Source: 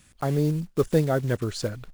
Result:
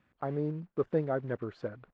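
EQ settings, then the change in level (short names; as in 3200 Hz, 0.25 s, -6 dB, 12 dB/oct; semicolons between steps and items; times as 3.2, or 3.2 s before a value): HPF 290 Hz 6 dB/oct; LPF 1600 Hz 12 dB/oct; air absorption 67 m; -5.0 dB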